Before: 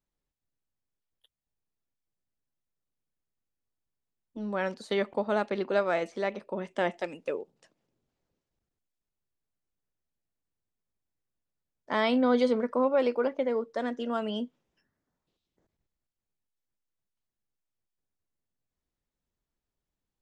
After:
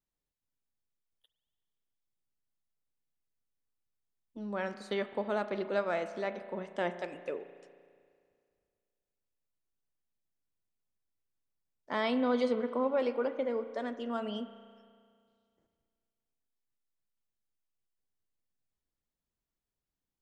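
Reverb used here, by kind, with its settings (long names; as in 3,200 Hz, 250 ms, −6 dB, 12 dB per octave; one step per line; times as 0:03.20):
spring reverb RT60 2.1 s, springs 34 ms, chirp 60 ms, DRR 11 dB
level −5 dB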